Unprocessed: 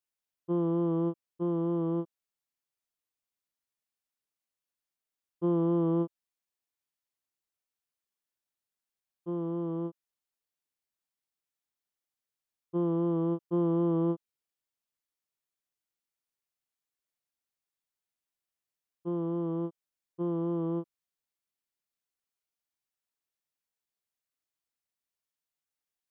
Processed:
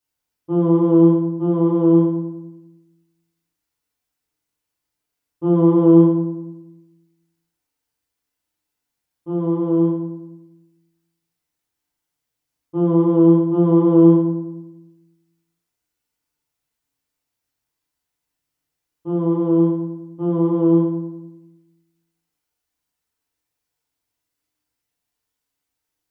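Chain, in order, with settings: bass shelf 77 Hz +8.5 dB; FDN reverb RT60 0.92 s, low-frequency decay 1.45×, high-frequency decay 0.65×, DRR -6.5 dB; trim +3.5 dB

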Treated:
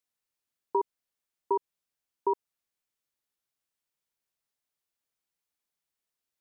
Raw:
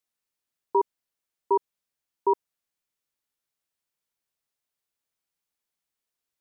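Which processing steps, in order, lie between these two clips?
compression 2:1, threshold -23 dBFS, peak gain reduction 3.5 dB; trim -2 dB

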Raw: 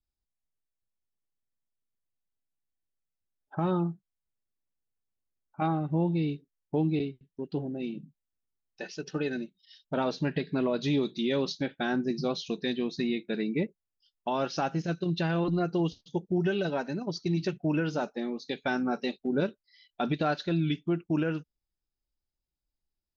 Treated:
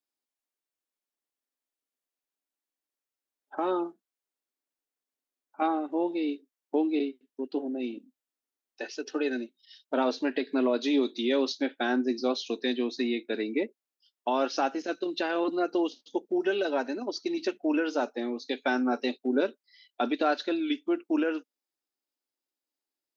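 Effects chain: elliptic high-pass 250 Hz, stop band 40 dB; trim +3 dB

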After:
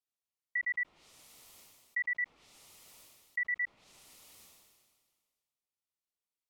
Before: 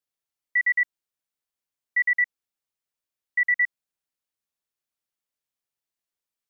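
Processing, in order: peaking EQ 1.6 kHz -13.5 dB 0.23 oct; low-pass that closes with the level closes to 1.9 kHz, closed at -26.5 dBFS; decay stretcher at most 33 dB/s; trim -6.5 dB

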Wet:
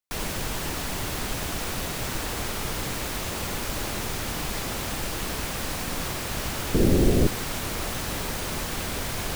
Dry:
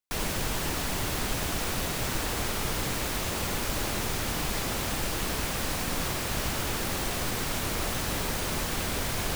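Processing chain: 6.74–7.27 s: resonant low shelf 600 Hz +14 dB, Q 1.5

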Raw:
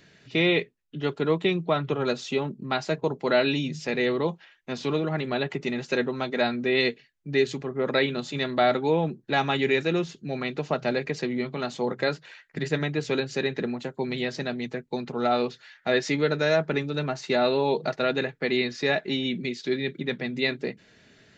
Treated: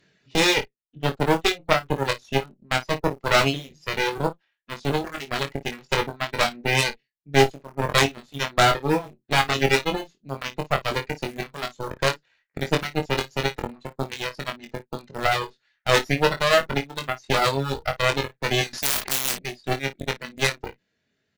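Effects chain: Chebyshev shaper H 3 -12 dB, 4 -25 dB, 6 -11 dB, 8 -20 dB, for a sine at -9.5 dBFS; in parallel at -8 dB: bit crusher 5-bit; on the sum: reverb removal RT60 1.7 s; early reflections 22 ms -5 dB, 54 ms -16.5 dB; 18.73–19.39 s: spectrum-flattening compressor 10:1; trim +4.5 dB

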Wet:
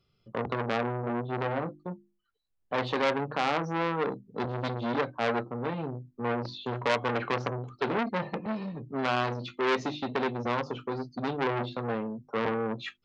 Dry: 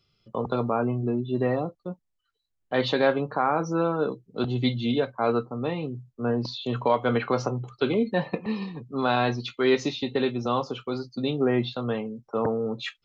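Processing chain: treble shelf 2.1 kHz -10 dB; hum notches 50/100/150/200/250/300/350 Hz; transformer saturation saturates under 2.4 kHz; trim +1 dB

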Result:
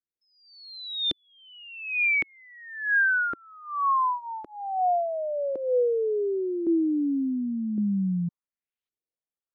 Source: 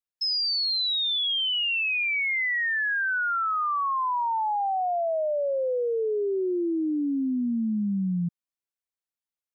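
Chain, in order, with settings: LFO low-pass saw up 0.9 Hz 320–3800 Hz; rotary cabinet horn 1.2 Hz

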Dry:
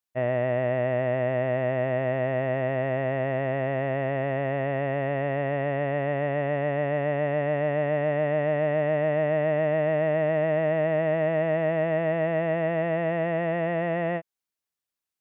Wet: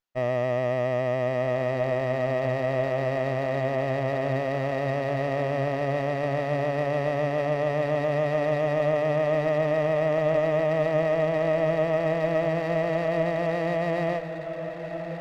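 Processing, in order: echo that smears into a reverb 1347 ms, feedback 54%, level -9.5 dB; sliding maximum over 5 samples

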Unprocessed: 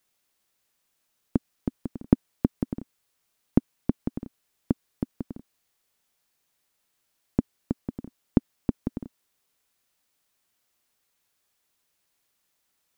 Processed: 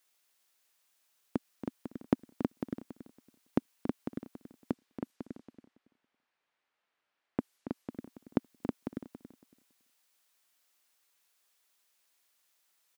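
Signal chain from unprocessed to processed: high-pass 730 Hz 6 dB/octave; 4.71–7.91 s: level-controlled noise filter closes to 2.1 kHz, open at -40 dBFS; on a send: feedback delay 279 ms, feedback 19%, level -11 dB; on the sum: trim +1 dB

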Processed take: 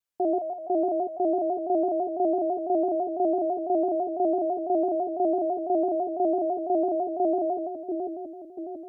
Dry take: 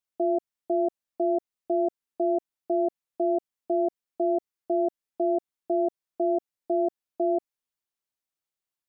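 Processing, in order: two-band feedback delay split 590 Hz, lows 688 ms, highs 148 ms, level -3.5 dB; vibrato with a chosen wave square 6 Hz, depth 100 cents

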